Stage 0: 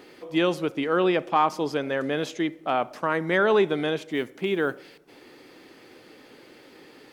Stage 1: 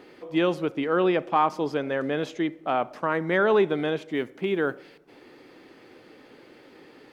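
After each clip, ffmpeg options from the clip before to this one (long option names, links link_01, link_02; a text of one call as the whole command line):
ffmpeg -i in.wav -af "highshelf=frequency=4100:gain=-9.5" out.wav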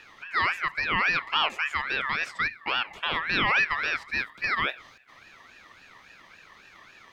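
ffmpeg -i in.wav -filter_complex "[0:a]asplit=2[link_01][link_02];[link_02]alimiter=limit=-17.5dB:level=0:latency=1,volume=-2dB[link_03];[link_01][link_03]amix=inputs=2:normalize=0,aeval=exprs='val(0)*sin(2*PI*1800*n/s+1800*0.2/3.6*sin(2*PI*3.6*n/s))':channel_layout=same,volume=-3.5dB" out.wav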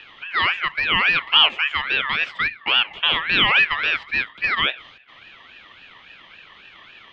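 ffmpeg -i in.wav -filter_complex "[0:a]acrossover=split=190|2400[link_01][link_02][link_03];[link_01]acrusher=bits=6:mode=log:mix=0:aa=0.000001[link_04];[link_03]lowpass=frequency=3100:width_type=q:width=4.8[link_05];[link_04][link_02][link_05]amix=inputs=3:normalize=0,volume=3.5dB" out.wav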